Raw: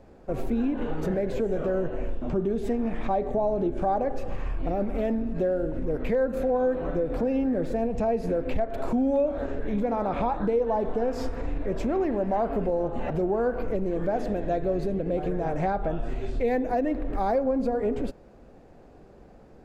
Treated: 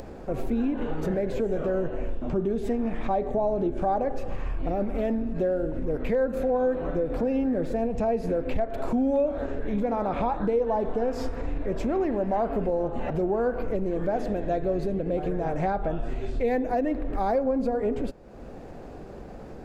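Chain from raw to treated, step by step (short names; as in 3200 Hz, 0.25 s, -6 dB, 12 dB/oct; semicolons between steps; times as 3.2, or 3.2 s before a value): upward compressor, threshold -30 dBFS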